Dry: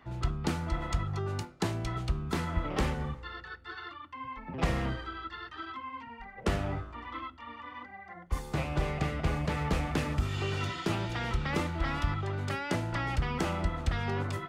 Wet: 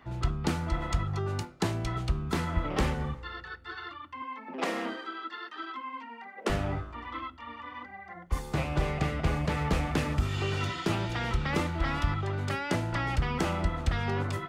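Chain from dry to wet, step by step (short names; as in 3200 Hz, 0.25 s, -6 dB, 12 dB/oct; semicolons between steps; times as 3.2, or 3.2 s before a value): 4.22–6.5 steep high-pass 220 Hz 48 dB/oct; gain +2 dB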